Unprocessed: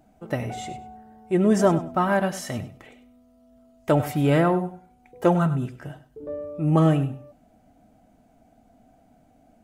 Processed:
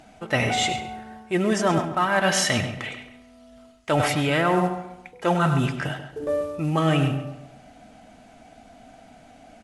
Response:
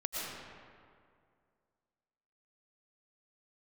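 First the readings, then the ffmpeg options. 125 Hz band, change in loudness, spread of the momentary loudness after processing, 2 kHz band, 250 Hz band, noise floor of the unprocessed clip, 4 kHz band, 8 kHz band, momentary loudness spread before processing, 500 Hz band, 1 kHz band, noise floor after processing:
-1.0 dB, 0.0 dB, 14 LU, +8.0 dB, -2.0 dB, -59 dBFS, +13.0 dB, +10.0 dB, 18 LU, -0.5 dB, +3.0 dB, -51 dBFS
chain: -filter_complex "[0:a]equalizer=f=3000:w=0.34:g=14,areverse,acompressor=threshold=0.0708:ratio=12,areverse,acrusher=bits=7:mode=log:mix=0:aa=0.000001,asplit=2[s0][s1];[s1]adelay=137,lowpass=f=2500:p=1,volume=0.316,asplit=2[s2][s3];[s3]adelay=137,lowpass=f=2500:p=1,volume=0.36,asplit=2[s4][s5];[s5]adelay=137,lowpass=f=2500:p=1,volume=0.36,asplit=2[s6][s7];[s7]adelay=137,lowpass=f=2500:p=1,volume=0.36[s8];[s0][s2][s4][s6][s8]amix=inputs=5:normalize=0,volume=1.78" -ar 44100 -c:a mp2 -b:a 96k

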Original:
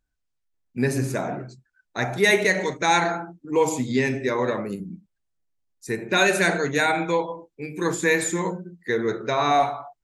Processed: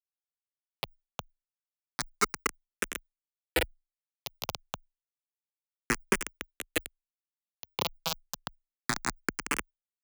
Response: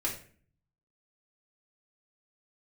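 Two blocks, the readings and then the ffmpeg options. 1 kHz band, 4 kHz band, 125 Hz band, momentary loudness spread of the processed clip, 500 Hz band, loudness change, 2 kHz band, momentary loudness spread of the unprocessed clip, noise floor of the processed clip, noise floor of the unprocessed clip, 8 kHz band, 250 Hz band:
-14.0 dB, -7.5 dB, -16.5 dB, 14 LU, -17.5 dB, -12.0 dB, -12.0 dB, 15 LU, under -85 dBFS, -77 dBFS, -6.5 dB, -15.0 dB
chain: -filter_complex "[0:a]aeval=exprs='val(0)+0.5*0.0335*sgn(val(0))':c=same,acompressor=threshold=0.0562:ratio=6,flanger=delay=0.4:depth=1.9:regen=-25:speed=0.66:shape=sinusoidal,highshelf=f=2400:g=-5.5,aecho=1:1:461:0.0891,afftfilt=real='re*between(b*sr/4096,100,7400)':imag='im*between(b*sr/4096,100,7400)':win_size=4096:overlap=0.75,acrusher=bits=3:mix=0:aa=0.000001,afreqshift=15,asplit=2[s0][s1];[s1]afreqshift=0.29[s2];[s0][s2]amix=inputs=2:normalize=1,volume=2.37"

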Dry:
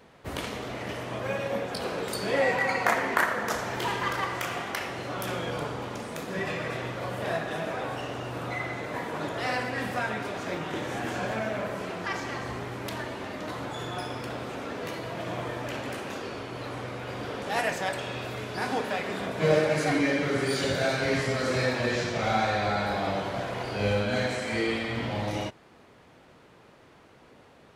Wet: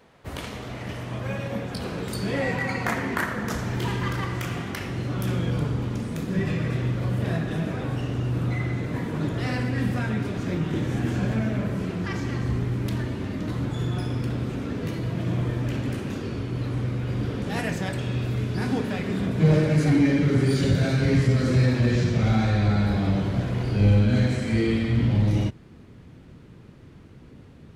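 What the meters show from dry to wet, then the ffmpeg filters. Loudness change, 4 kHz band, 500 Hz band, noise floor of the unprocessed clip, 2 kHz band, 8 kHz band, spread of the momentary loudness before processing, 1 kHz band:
+4.5 dB, -2.0 dB, -1.5 dB, -55 dBFS, -2.5 dB, -1.5 dB, 10 LU, -5.0 dB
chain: -af "asubboost=boost=8:cutoff=240,acontrast=74,volume=0.398"

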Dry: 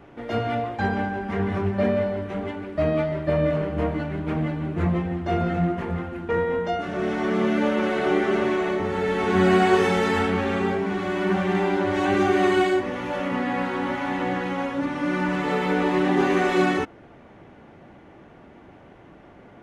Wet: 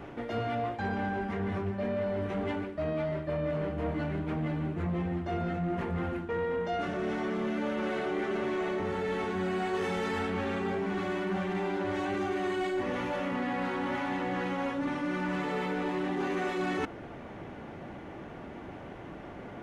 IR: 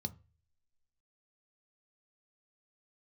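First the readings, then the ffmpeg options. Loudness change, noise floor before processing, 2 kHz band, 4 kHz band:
-8.5 dB, -48 dBFS, -8.5 dB, -9.0 dB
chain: -af "areverse,acompressor=threshold=0.0224:ratio=6,areverse,asoftclip=type=tanh:threshold=0.0398,volume=1.68"

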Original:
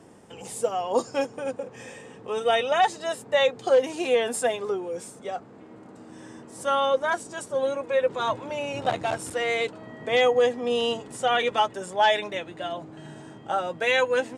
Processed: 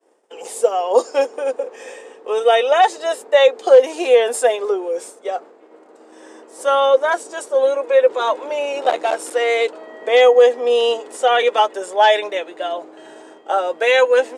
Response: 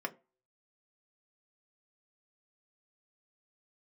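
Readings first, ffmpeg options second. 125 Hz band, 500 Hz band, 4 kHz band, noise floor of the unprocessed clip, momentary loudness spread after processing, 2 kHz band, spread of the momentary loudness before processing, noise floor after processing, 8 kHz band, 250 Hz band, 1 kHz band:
under -20 dB, +10.0 dB, +5.5 dB, -47 dBFS, 14 LU, +6.0 dB, 16 LU, -47 dBFS, +5.5 dB, +0.5 dB, +7.5 dB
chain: -af "equalizer=f=490:t=o:w=1.2:g=5,agate=range=0.0224:threshold=0.0126:ratio=3:detection=peak,highpass=f=350:w=0.5412,highpass=f=350:w=1.3066,volume=1.88"

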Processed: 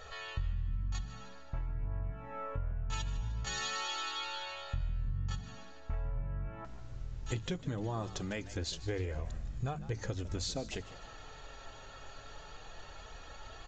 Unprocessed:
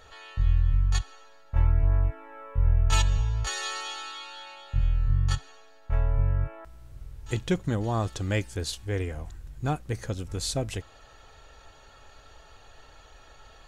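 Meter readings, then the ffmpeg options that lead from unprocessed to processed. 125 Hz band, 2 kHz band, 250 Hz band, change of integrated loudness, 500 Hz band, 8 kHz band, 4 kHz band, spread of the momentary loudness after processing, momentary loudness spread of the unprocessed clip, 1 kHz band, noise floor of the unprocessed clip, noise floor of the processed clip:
-11.0 dB, -5.5 dB, -8.0 dB, -10.5 dB, -7.5 dB, -7.5 dB, -5.0 dB, 14 LU, 16 LU, -6.0 dB, -53 dBFS, -50 dBFS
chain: -filter_complex "[0:a]bandreject=f=50:t=h:w=6,bandreject=f=100:t=h:w=6,bandreject=f=150:t=h:w=6,asplit=2[s0][s1];[s1]alimiter=limit=0.0794:level=0:latency=1,volume=0.794[s2];[s0][s2]amix=inputs=2:normalize=0,acompressor=threshold=0.0282:ratio=6,flanger=delay=1.6:depth=6:regen=-44:speed=0.21:shape=sinusoidal,asplit=2[s3][s4];[s4]asplit=3[s5][s6][s7];[s5]adelay=151,afreqshift=73,volume=0.158[s8];[s6]adelay=302,afreqshift=146,volume=0.0589[s9];[s7]adelay=453,afreqshift=219,volume=0.0216[s10];[s8][s9][s10]amix=inputs=3:normalize=0[s11];[s3][s11]amix=inputs=2:normalize=0,aresample=16000,aresample=44100,volume=1.12"

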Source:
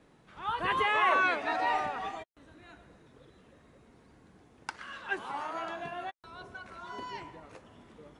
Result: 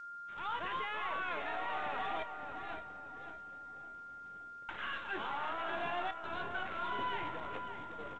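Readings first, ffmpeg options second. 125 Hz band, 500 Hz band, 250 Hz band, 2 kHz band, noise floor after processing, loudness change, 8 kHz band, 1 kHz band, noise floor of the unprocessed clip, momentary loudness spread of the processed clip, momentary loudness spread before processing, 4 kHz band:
-3.0 dB, -5.0 dB, -4.0 dB, -7.0 dB, -49 dBFS, -8.5 dB, under -10 dB, -5.5 dB, -62 dBFS, 11 LU, 20 LU, -4.0 dB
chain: -filter_complex "[0:a]agate=range=0.0224:threshold=0.00316:ratio=3:detection=peak,lowshelf=f=430:g=-6.5,areverse,acompressor=threshold=0.0112:ratio=16,areverse,alimiter=level_in=5.31:limit=0.0631:level=0:latency=1:release=14,volume=0.188,acrusher=bits=2:mode=log:mix=0:aa=0.000001,aeval=exprs='0.0112*(cos(1*acos(clip(val(0)/0.0112,-1,1)))-cos(1*PI/2))+0.00158*(cos(4*acos(clip(val(0)/0.0112,-1,1)))-cos(4*PI/2))+0.000141*(cos(6*acos(clip(val(0)/0.0112,-1,1)))-cos(6*PI/2))+0.000398*(cos(8*acos(clip(val(0)/0.0112,-1,1)))-cos(8*PI/2))':c=same,aeval=exprs='val(0)+0.00251*sin(2*PI*1400*n/s)':c=same,asplit=2[s0][s1];[s1]adelay=30,volume=0.2[s2];[s0][s2]amix=inputs=2:normalize=0,asplit=2[s3][s4];[s4]adelay=566,lowpass=f=1800:p=1,volume=0.447,asplit=2[s5][s6];[s6]adelay=566,lowpass=f=1800:p=1,volume=0.4,asplit=2[s7][s8];[s8]adelay=566,lowpass=f=1800:p=1,volume=0.4,asplit=2[s9][s10];[s10]adelay=566,lowpass=f=1800:p=1,volume=0.4,asplit=2[s11][s12];[s12]adelay=566,lowpass=f=1800:p=1,volume=0.4[s13];[s3][s5][s7][s9][s11][s13]amix=inputs=6:normalize=0,aresample=8000,aresample=44100,volume=2.11" -ar 16000 -c:a g722

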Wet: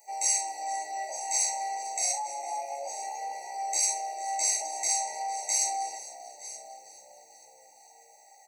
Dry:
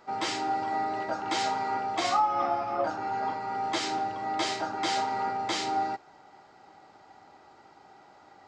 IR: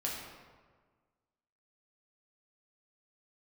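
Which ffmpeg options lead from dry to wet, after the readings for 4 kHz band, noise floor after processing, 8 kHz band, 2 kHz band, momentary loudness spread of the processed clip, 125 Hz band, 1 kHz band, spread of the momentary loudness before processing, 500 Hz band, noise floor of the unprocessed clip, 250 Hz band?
-2.5 dB, -57 dBFS, +16.5 dB, -6.5 dB, 15 LU, under -35 dB, -5.0 dB, 5 LU, -8.0 dB, -56 dBFS, under -25 dB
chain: -filter_complex "[0:a]flanger=delay=17.5:depth=5.9:speed=0.25,asplit=2[s0][s1];[s1]aecho=0:1:927:0.112[s2];[s0][s2]amix=inputs=2:normalize=0,alimiter=level_in=1.19:limit=0.0631:level=0:latency=1:release=36,volume=0.841,aexciter=amount=11.4:drive=9.7:freq=5800,highpass=f=600:w=0.5412,highpass=f=600:w=1.3066,asplit=2[s3][s4];[s4]adelay=45,volume=0.282[s5];[s3][s5]amix=inputs=2:normalize=0,asplit=2[s6][s7];[s7]asplit=5[s8][s9][s10][s11][s12];[s8]adelay=452,afreqshift=-64,volume=0.141[s13];[s9]adelay=904,afreqshift=-128,volume=0.0804[s14];[s10]adelay=1356,afreqshift=-192,volume=0.0457[s15];[s11]adelay=1808,afreqshift=-256,volume=0.0263[s16];[s12]adelay=2260,afreqshift=-320,volume=0.015[s17];[s13][s14][s15][s16][s17]amix=inputs=5:normalize=0[s18];[s6][s18]amix=inputs=2:normalize=0,afftfilt=real='re*eq(mod(floor(b*sr/1024/940),2),0)':imag='im*eq(mod(floor(b*sr/1024/940),2),0)':win_size=1024:overlap=0.75"

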